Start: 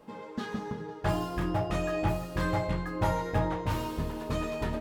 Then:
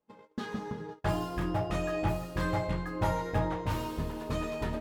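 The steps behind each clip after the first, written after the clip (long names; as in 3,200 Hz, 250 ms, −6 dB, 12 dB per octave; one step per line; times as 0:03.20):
noise gate −40 dBFS, range −27 dB
level −1.5 dB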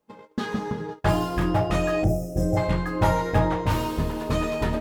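gain on a spectral selection 0:02.04–0:02.57, 800–5,000 Hz −25 dB
level +8.5 dB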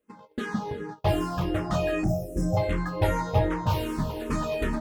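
frequency shifter mixed with the dry sound −2.6 Hz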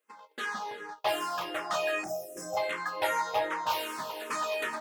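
high-pass filter 860 Hz 12 dB per octave
level +3 dB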